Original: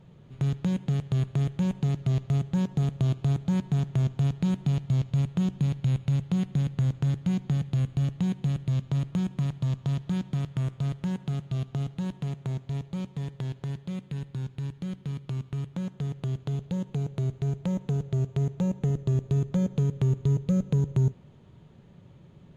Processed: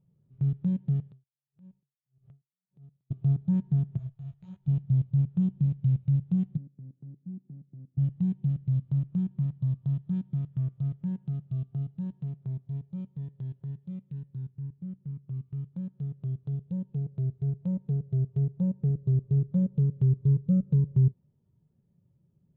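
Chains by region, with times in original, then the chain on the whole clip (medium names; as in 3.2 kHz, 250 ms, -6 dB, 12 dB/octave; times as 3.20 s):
1.09–3.11 s: compression 8:1, threshold -39 dBFS + logarithmic tremolo 1.7 Hz, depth 38 dB
3.97–4.68 s: peaking EQ 250 Hz -14 dB 1.6 oct + detune thickener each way 55 cents
6.57–7.98 s: band-pass filter 270 Hz, Q 1.5 + tilt EQ +2 dB/octave
14.54–15.34 s: distance through air 320 m + sliding maximum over 3 samples
whole clip: treble shelf 5.1 kHz -6.5 dB; spectral contrast expander 1.5:1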